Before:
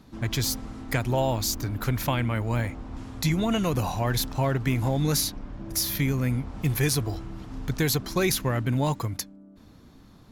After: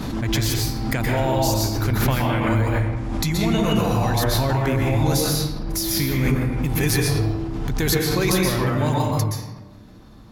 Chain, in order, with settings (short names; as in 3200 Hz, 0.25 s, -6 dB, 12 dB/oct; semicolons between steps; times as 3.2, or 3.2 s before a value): reverb RT60 1.1 s, pre-delay 0.117 s, DRR -3 dB; backwards sustainer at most 26 dB/s